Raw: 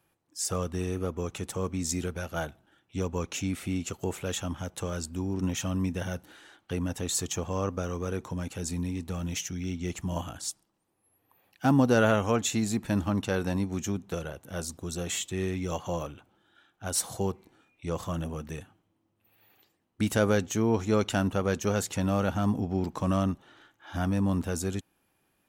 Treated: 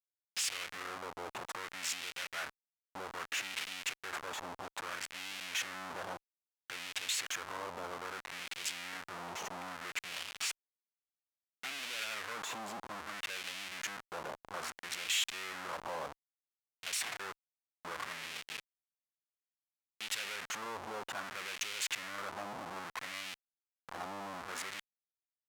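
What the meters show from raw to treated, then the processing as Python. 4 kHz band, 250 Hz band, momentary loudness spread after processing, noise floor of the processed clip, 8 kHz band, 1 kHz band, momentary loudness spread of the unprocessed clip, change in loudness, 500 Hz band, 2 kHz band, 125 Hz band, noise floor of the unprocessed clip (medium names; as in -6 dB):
+0.5 dB, -25.5 dB, 10 LU, under -85 dBFS, -6.5 dB, -6.0 dB, 11 LU, -9.5 dB, -17.0 dB, -1.0 dB, -29.5 dB, -74 dBFS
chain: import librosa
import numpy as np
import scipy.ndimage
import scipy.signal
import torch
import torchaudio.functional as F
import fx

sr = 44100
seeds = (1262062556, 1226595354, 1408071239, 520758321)

y = fx.schmitt(x, sr, flips_db=-38.0)
y = fx.filter_lfo_bandpass(y, sr, shape='sine', hz=0.61, low_hz=880.0, high_hz=2700.0, q=1.7)
y = scipy.signal.lfilter([1.0, -0.8], [1.0], y)
y = F.gain(torch.from_numpy(y), 11.0).numpy()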